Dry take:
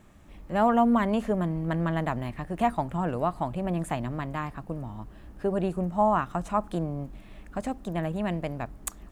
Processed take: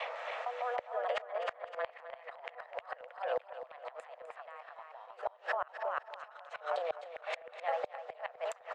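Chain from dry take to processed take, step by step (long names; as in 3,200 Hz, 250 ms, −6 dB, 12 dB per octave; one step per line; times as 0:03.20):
slices reordered back to front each 160 ms, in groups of 3
high-shelf EQ 9,500 Hz −10.5 dB
compressor whose output falls as the input rises −37 dBFS, ratio −1
Chebyshev high-pass with heavy ripple 460 Hz, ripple 3 dB
single-tap delay 323 ms −4.5 dB
gate with flip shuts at −34 dBFS, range −28 dB
high-frequency loss of the air 180 metres
on a send: repeating echo 265 ms, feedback 28%, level −14 dB
on the sum: wrong playback speed 24 fps film run at 25 fps
multiband upward and downward compressor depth 40%
level +14 dB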